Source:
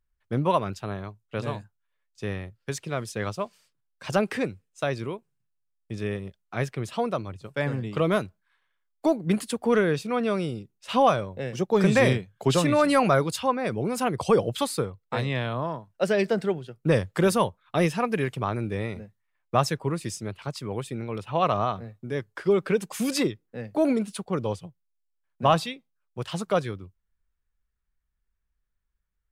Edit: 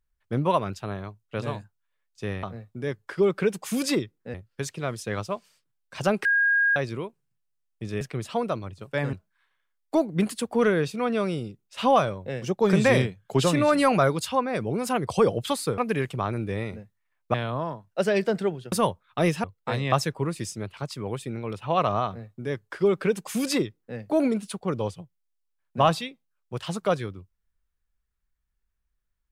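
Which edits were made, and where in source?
0:04.34–0:04.85: beep over 1,630 Hz −18 dBFS
0:06.10–0:06.64: remove
0:07.76–0:08.24: remove
0:14.89–0:15.37: swap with 0:18.01–0:19.57
0:16.75–0:17.29: remove
0:21.71–0:23.62: duplicate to 0:02.43

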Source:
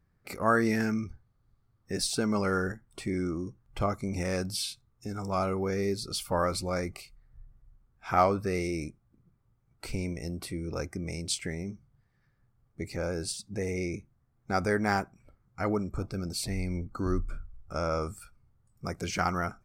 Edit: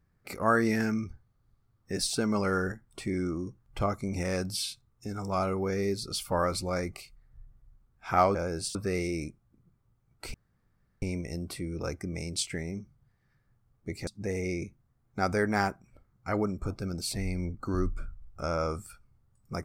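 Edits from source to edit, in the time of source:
0:09.94: splice in room tone 0.68 s
0:12.99–0:13.39: move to 0:08.35

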